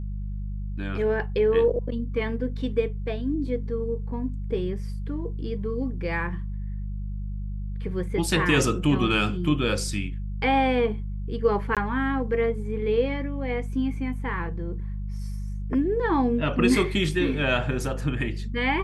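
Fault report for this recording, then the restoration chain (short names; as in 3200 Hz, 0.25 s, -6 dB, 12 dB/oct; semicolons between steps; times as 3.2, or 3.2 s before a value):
hum 50 Hz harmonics 4 -31 dBFS
11.75–11.77 gap 17 ms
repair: de-hum 50 Hz, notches 4; interpolate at 11.75, 17 ms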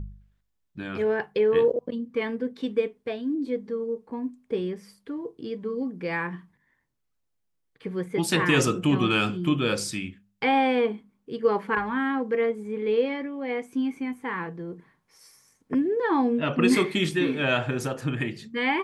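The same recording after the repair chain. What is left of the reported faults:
none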